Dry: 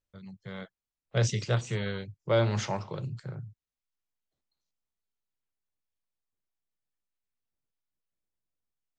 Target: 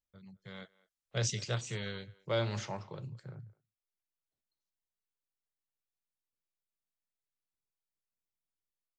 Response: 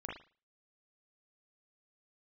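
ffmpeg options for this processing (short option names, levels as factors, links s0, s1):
-filter_complex "[0:a]asettb=1/sr,asplit=3[s0][s1][s2];[s0]atrim=end=0.454[s3];[s1]atrim=start=0.45:end=2.59,asetpts=PTS-STARTPTS,afade=t=in:d=0.004:c=qsin,afade=t=out:st=2.136:d=0.004:c=qsin,equalizer=f=6900:w=0.35:g=8.5[s4];[s2]atrim=start=2.586[s5];[s3][s4]acrossfade=d=0.004:c1=hsin:c2=qsin[s6];[s6][s5]acrossfade=d=0.004:c1=qsin:c2=hsin,asplit=2[s7][s8];[s8]adelay=210,highpass=300,lowpass=3400,asoftclip=type=hard:threshold=0.0891,volume=0.0794[s9];[s7][s9]amix=inputs=2:normalize=0,volume=0.398"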